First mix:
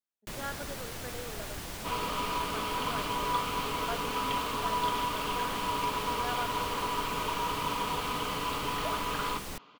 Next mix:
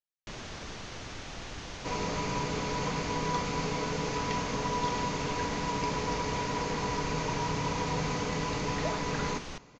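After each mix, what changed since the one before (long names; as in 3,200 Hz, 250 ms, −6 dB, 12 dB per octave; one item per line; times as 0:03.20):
speech: muted
second sound: remove loudspeaker in its box 310–4,200 Hz, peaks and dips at 350 Hz −5 dB, 530 Hz −7 dB, 770 Hz −4 dB, 1,200 Hz +9 dB, 1,900 Hz −7 dB, 3,100 Hz +10 dB
master: add elliptic low-pass filter 6,500 Hz, stop band 60 dB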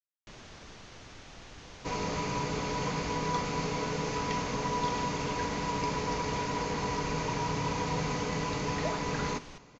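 first sound −7.5 dB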